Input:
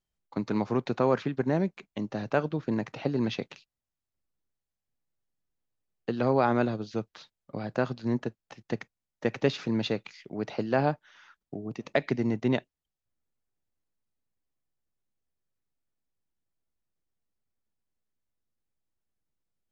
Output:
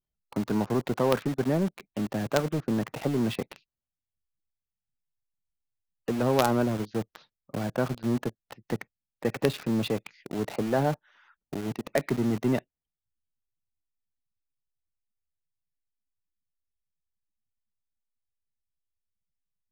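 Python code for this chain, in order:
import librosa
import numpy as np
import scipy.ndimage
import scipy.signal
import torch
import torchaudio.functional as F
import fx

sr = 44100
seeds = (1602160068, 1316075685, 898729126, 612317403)

p1 = fx.spec_gate(x, sr, threshold_db=-25, keep='strong')
p2 = fx.lowpass(p1, sr, hz=2000.0, slope=6)
p3 = fx.quant_companded(p2, sr, bits=2)
p4 = p2 + (p3 * librosa.db_to_amplitude(-6.0))
y = p4 * librosa.db_to_amplitude(-2.0)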